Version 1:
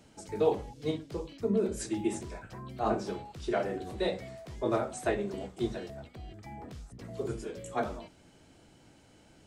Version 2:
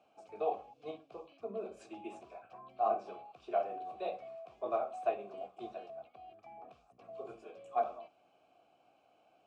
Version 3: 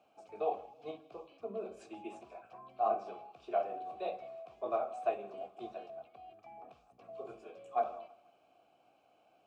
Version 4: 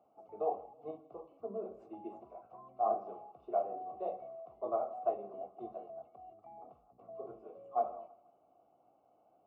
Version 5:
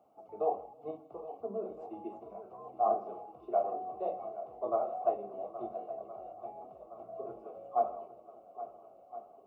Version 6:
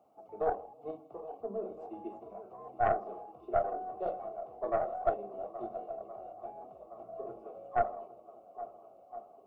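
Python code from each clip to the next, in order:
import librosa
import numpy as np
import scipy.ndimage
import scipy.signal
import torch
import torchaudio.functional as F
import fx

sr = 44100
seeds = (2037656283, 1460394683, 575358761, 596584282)

y1 = fx.vowel_filter(x, sr, vowel='a')
y1 = y1 * librosa.db_to_amplitude(4.5)
y2 = fx.echo_feedback(y1, sr, ms=161, feedback_pct=38, wet_db=-20.5)
y3 = scipy.signal.savgol_filter(y2, 65, 4, mode='constant')
y4 = fx.echo_swing(y3, sr, ms=1366, ratio=1.5, feedback_pct=51, wet_db=-14.0)
y4 = y4 * librosa.db_to_amplitude(3.0)
y5 = fx.tracing_dist(y4, sr, depth_ms=0.14)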